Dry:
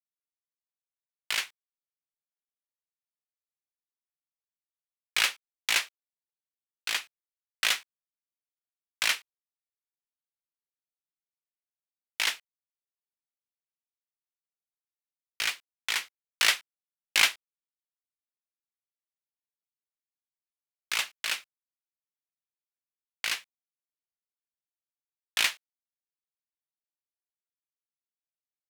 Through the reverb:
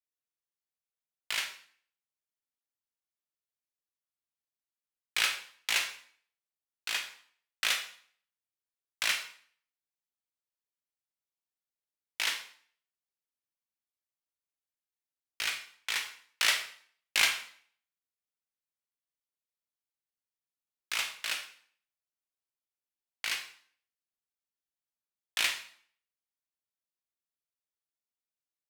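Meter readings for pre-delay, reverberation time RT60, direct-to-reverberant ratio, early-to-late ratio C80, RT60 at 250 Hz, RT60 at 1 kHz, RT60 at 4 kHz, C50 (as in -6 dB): 20 ms, 0.50 s, 4.5 dB, 12.5 dB, 0.60 s, 0.55 s, 0.50 s, 8.5 dB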